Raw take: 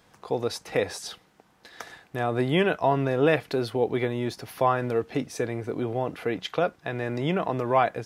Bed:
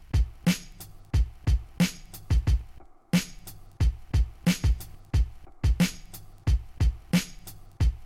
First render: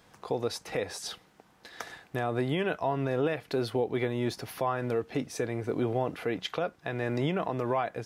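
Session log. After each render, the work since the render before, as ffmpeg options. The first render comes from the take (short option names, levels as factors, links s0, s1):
-af "alimiter=limit=0.119:level=0:latency=1:release=311"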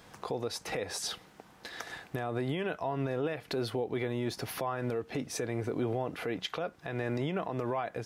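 -filter_complex "[0:a]asplit=2[s0][s1];[s1]acompressor=threshold=0.0112:ratio=6,volume=0.75[s2];[s0][s2]amix=inputs=2:normalize=0,alimiter=limit=0.0668:level=0:latency=1:release=166"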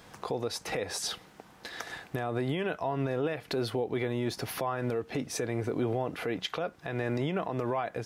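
-af "volume=1.26"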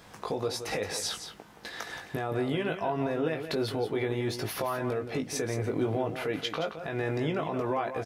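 -filter_complex "[0:a]asplit=2[s0][s1];[s1]adelay=19,volume=0.531[s2];[s0][s2]amix=inputs=2:normalize=0,aecho=1:1:173:0.335"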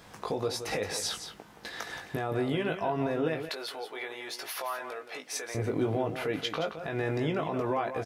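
-filter_complex "[0:a]asettb=1/sr,asplit=3[s0][s1][s2];[s0]atrim=end=3.494[s3];[s1]atrim=start=3.49:end=5.55,asetpts=PTS-STARTPTS,afade=t=in:d=0.004:c=qsin,afade=t=out:st=2.056:d=0.004:c=qsin,highpass=790[s4];[s2]atrim=start=5.546[s5];[s3][s4]acrossfade=d=0.004:c1=hsin:c2=qsin[s6];[s6][s5]acrossfade=d=0.004:c1=qsin:c2=hsin"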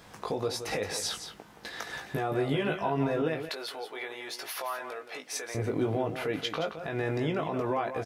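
-filter_complex "[0:a]asettb=1/sr,asplit=3[s0][s1][s2];[s0]atrim=end=1.924[s3];[s1]atrim=start=1.92:end=3.22,asetpts=PTS-STARTPTS,afade=t=in:d=0.004:c=qsin,afade=t=out:st=1.296:d=0.004:c=qsin,asplit=2[s4][s5];[s5]adelay=14,volume=0.631[s6];[s4][s6]amix=inputs=2:normalize=0,atrim=end_sample=57330[s7];[s2]atrim=start=3.216[s8];[s3][s7]acrossfade=d=0.004:c1=hsin:c2=qsin[s9];[s9][s8]acrossfade=d=0.004:c1=qsin:c2=hsin"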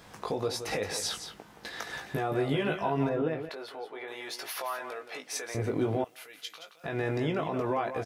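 -filter_complex "[0:a]asettb=1/sr,asplit=3[s0][s1][s2];[s0]atrim=end=3.094[s3];[s1]atrim=start=3.09:end=4.08,asetpts=PTS-STARTPTS,afade=t=in:d=0.004:c=qsin,afade=t=out:st=0.986:d=0.004:c=qsin,highshelf=f=2300:g=-12[s4];[s2]atrim=start=4.076[s5];[s3][s4]acrossfade=d=0.004:c1=hsin:c2=qsin[s6];[s6][s5]acrossfade=d=0.004:c1=qsin:c2=hsin,asettb=1/sr,asplit=3[s7][s8][s9];[s7]atrim=end=6.044[s10];[s8]atrim=start=6.04:end=6.84,asetpts=PTS-STARTPTS,afade=t=in:d=0.004:c=qsin,afade=t=out:st=0.796:d=0.004:c=qsin,aderivative[s11];[s9]atrim=start=6.836[s12];[s10][s11]acrossfade=d=0.004:c1=hsin:c2=qsin[s13];[s13][s12]acrossfade=d=0.004:c1=qsin:c2=hsin"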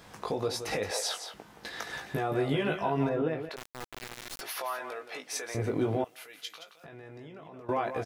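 -filter_complex "[0:a]asettb=1/sr,asplit=3[s0][s1][s2];[s0]atrim=end=0.914[s3];[s1]atrim=start=0.91:end=1.34,asetpts=PTS-STARTPTS,afade=t=in:d=0.004:c=qsin,afade=t=out:st=0.426:d=0.004:c=qsin,highpass=f=600:t=q:w=2.6[s4];[s2]atrim=start=1.336[s5];[s3][s4]acrossfade=d=0.004:c1=hsin:c2=qsin[s6];[s6][s5]acrossfade=d=0.004:c1=qsin:c2=hsin,asettb=1/sr,asplit=3[s7][s8][s9];[s7]atrim=end=3.564[s10];[s8]atrim=start=3.56:end=4.41,asetpts=PTS-STARTPTS,afade=t=in:d=0.004:c=qsin,afade=t=out:st=0.846:d=0.004:c=qsin,acrusher=bits=3:dc=4:mix=0:aa=0.000001[s11];[s9]atrim=start=4.406[s12];[s10][s11]acrossfade=d=0.004:c1=hsin:c2=qsin[s13];[s13][s12]acrossfade=d=0.004:c1=qsin:c2=hsin,asettb=1/sr,asplit=3[s14][s15][s16];[s14]atrim=end=6.634[s17];[s15]atrim=start=6.63:end=7.69,asetpts=PTS-STARTPTS,afade=t=in:d=0.004:c=qsin,afade=t=out:st=1.056:d=0.004:c=qsin,acompressor=threshold=0.00447:ratio=4:attack=3.2:release=140:knee=1:detection=peak[s18];[s16]atrim=start=7.686[s19];[s17][s18]acrossfade=d=0.004:c1=hsin:c2=qsin[s20];[s20][s19]acrossfade=d=0.004:c1=qsin:c2=hsin"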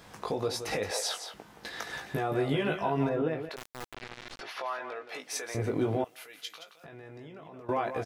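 -filter_complex "[0:a]asettb=1/sr,asplit=3[s0][s1][s2];[s0]atrim=end=3.944[s3];[s1]atrim=start=3.94:end=5.09,asetpts=PTS-STARTPTS,afade=t=in:d=0.004:c=qsin,afade=t=out:st=1.146:d=0.004:c=qsin,lowpass=4100[s4];[s2]atrim=start=5.086[s5];[s3][s4]acrossfade=d=0.004:c1=hsin:c2=qsin[s6];[s6][s5]acrossfade=d=0.004:c1=qsin:c2=hsin"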